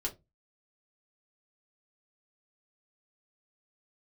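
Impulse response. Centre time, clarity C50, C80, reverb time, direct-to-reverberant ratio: 12 ms, 17.5 dB, 25.0 dB, 0.20 s, −2.0 dB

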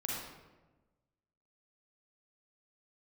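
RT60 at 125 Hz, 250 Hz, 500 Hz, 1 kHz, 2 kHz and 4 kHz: 1.5, 1.4, 1.3, 1.1, 0.90, 0.70 seconds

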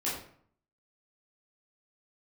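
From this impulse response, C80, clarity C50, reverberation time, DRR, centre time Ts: 7.0 dB, 3.5 dB, 0.60 s, −9.0 dB, 45 ms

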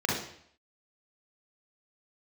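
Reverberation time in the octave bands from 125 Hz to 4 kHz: 0.70, 0.60, 0.65, 0.65, 0.65, 0.65 seconds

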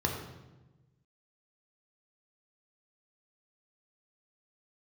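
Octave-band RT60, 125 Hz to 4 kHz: 1.7, 1.5, 1.2, 1.0, 0.90, 0.80 seconds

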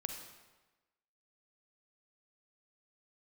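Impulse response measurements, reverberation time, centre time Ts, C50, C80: 1.2 s, 33 ms, 5.0 dB, 7.0 dB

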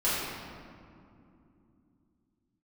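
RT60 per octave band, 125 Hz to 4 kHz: 4.1, 4.6, 3.0, 2.4, 1.8, 1.2 seconds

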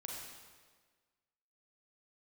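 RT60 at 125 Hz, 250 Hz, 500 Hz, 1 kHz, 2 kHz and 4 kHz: 1.4, 1.5, 1.6, 1.5, 1.4, 1.3 seconds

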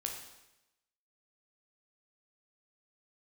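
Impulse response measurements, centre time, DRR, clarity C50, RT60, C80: 34 ms, 1.0 dB, 5.0 dB, 0.95 s, 7.0 dB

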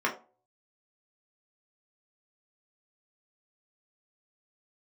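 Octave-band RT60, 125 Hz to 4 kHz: 0.40, 0.35, 0.40, 0.35, 0.25, 0.20 seconds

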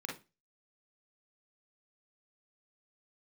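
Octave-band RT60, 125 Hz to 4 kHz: 0.35, 0.30, 0.25, 0.25, 0.25, 0.25 seconds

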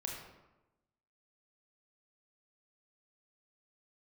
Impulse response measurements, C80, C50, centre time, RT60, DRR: 4.5 dB, 2.0 dB, 54 ms, 1.0 s, −1.0 dB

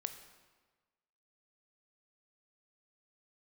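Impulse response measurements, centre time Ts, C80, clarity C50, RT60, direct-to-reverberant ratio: 15 ms, 11.5 dB, 10.0 dB, 1.4 s, 8.0 dB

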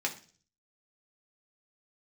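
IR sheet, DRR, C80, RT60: 0.0 dB, 17.5 dB, 0.40 s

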